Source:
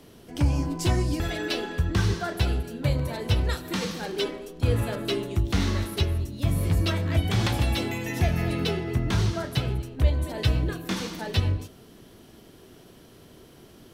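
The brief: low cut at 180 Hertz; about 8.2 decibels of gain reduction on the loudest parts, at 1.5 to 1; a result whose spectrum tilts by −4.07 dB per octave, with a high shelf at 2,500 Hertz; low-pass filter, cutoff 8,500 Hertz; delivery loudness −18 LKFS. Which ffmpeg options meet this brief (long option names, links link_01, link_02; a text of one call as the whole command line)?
ffmpeg -i in.wav -af "highpass=180,lowpass=8500,highshelf=frequency=2500:gain=5.5,acompressor=threshold=-46dB:ratio=1.5,volume=18.5dB" out.wav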